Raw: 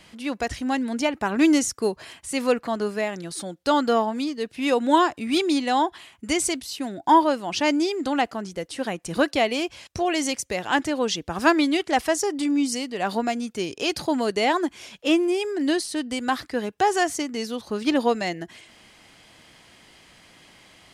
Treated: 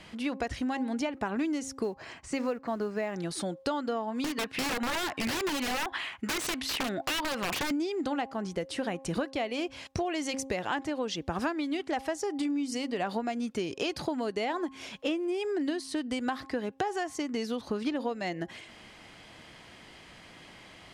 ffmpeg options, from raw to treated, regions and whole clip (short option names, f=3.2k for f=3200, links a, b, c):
-filter_complex "[0:a]asettb=1/sr,asplit=3[a][b][c];[a]atrim=end=1.834[d];[b]atrim=start=1.83:end=3.16,asetpts=PTS-STARTPTS,afade=t=in:d=0.004:c=qsin,afade=t=out:st=1.326:d=0.004:c=qsin,lowpass=f=7.2k:w=0.5412,lowpass=f=7.2k:w=1.3066,equalizer=f=3.4k:t=o:w=0.6:g=-7.5,acrusher=bits=7:mode=log:mix=0:aa=0.000001[e];[c]atrim=start=3.156[f];[d][e]acrossfade=d=0.004:c1=hsin:c2=qsin[g];[g][f]acrossfade=d=0.004:c1=qsin:c2=hsin,asettb=1/sr,asplit=3[h][i][j];[h]atrim=end=4.244[k];[i]atrim=start=4.24:end=7.71,asetpts=PTS-STARTPTS,afade=t=in:d=0.004:c=qsin,afade=t=out:st=3.466:d=0.004:c=qsin,equalizer=f=1.8k:t=o:w=2.5:g=11.5,acompressor=threshold=-23dB:ratio=6:attack=3.2:release=140:knee=1:detection=peak,aeval=exprs='(mod(12.6*val(0)+1,2)-1)/12.6':c=same[l];[j]atrim=start=7.706[m];[k][l]acrossfade=d=0.004:c1=hsin:c2=qsin[n];[n][m]acrossfade=d=0.004:c1=qsin:c2=hsin,aemphasis=mode=reproduction:type=cd,bandreject=f=268.4:t=h:w=4,bandreject=f=536.8:t=h:w=4,bandreject=f=805.2:t=h:w=4,bandreject=f=1.0736k:t=h:w=4,acompressor=threshold=-30dB:ratio=12,volume=2dB"